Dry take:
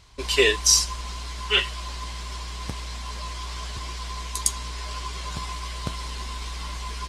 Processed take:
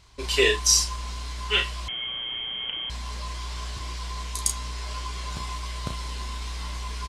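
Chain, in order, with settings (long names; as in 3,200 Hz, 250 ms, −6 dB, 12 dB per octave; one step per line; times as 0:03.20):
double-tracking delay 33 ms −6.5 dB
0:01.88–0:02.90: voice inversion scrambler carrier 3,200 Hz
level −2.5 dB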